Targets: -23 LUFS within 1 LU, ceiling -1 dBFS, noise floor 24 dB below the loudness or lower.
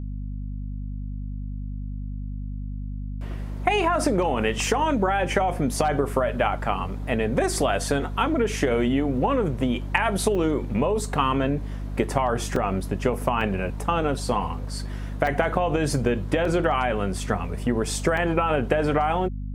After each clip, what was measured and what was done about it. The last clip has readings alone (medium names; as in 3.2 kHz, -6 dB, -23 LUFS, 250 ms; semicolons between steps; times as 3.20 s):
dropouts 6; longest dropout 2.9 ms; hum 50 Hz; highest harmonic 250 Hz; hum level -29 dBFS; loudness -25.0 LUFS; peak level -4.0 dBFS; loudness target -23.0 LUFS
-> interpolate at 10.35/12.56/13.41/15.27/16.45/18.17 s, 2.9 ms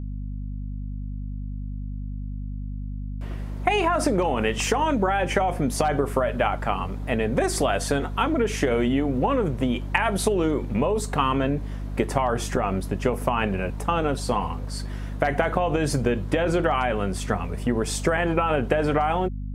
dropouts 0; hum 50 Hz; highest harmonic 250 Hz; hum level -29 dBFS
-> de-hum 50 Hz, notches 5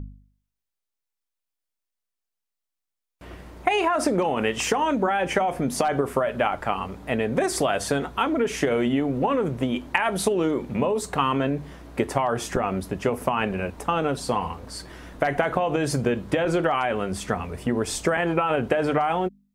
hum not found; loudness -24.5 LUFS; peak level -4.0 dBFS; loudness target -23.0 LUFS
-> trim +1.5 dB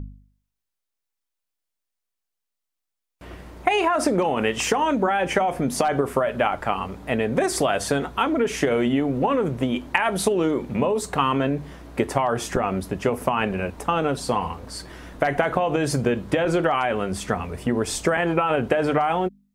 loudness -23.0 LUFS; peak level -2.5 dBFS; noise floor -82 dBFS